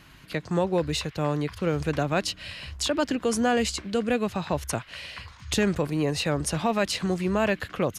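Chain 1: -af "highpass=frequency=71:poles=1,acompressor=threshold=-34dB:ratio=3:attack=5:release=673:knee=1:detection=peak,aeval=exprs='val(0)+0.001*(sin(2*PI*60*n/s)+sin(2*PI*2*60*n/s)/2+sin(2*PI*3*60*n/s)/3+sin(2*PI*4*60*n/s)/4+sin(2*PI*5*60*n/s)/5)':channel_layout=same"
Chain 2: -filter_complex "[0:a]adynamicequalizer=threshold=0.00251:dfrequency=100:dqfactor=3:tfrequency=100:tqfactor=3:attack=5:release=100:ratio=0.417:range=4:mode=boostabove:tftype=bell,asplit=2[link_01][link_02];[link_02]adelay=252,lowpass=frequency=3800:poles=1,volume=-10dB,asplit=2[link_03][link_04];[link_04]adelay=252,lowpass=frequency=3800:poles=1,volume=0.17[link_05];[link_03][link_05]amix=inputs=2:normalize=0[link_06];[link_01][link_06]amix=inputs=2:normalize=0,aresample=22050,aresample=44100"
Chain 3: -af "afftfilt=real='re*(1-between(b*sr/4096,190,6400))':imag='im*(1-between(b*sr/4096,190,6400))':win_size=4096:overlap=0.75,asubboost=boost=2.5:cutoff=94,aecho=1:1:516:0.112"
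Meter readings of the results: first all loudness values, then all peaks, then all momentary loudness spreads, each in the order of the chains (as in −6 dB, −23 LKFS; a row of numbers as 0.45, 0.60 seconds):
−37.5, −26.5, −34.5 LKFS; −19.0, −11.0, −17.0 dBFS; 5, 8, 10 LU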